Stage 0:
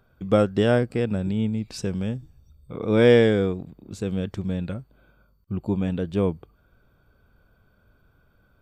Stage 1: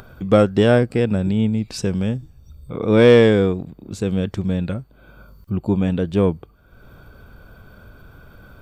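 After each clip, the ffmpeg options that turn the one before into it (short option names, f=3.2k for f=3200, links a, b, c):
-af "acompressor=mode=upward:threshold=-38dB:ratio=2.5,asoftclip=type=tanh:threshold=-8dB,volume=6dB"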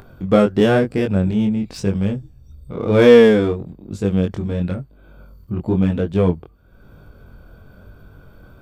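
-filter_complex "[0:a]asplit=2[a][b];[b]adynamicsmooth=sensitivity=5.5:basefreq=730,volume=-2.5dB[c];[a][c]amix=inputs=2:normalize=0,flanger=delay=20:depth=4:speed=1,volume=-1dB"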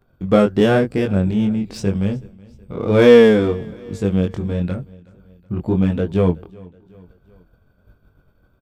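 -af "agate=range=-33dB:threshold=-33dB:ratio=3:detection=peak,aecho=1:1:373|746|1119:0.0631|0.0328|0.0171"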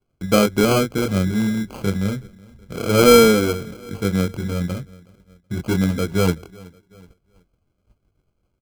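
-filter_complex "[0:a]agate=range=-10dB:threshold=-46dB:ratio=16:detection=peak,acrossover=split=180[a][b];[b]acrusher=samples=24:mix=1:aa=0.000001[c];[a][c]amix=inputs=2:normalize=0,volume=-2dB"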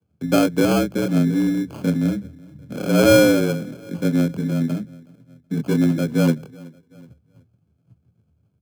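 -af "lowshelf=f=180:g=11.5,afreqshift=73,volume=-4.5dB"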